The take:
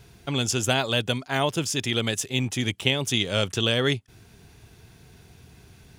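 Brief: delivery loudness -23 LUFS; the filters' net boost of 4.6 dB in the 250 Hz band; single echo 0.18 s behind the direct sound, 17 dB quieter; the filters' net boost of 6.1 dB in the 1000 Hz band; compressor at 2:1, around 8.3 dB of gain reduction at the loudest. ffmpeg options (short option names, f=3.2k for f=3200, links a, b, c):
-af "equalizer=f=250:t=o:g=5,equalizer=f=1k:t=o:g=8,acompressor=threshold=-30dB:ratio=2,aecho=1:1:180:0.141,volume=6.5dB"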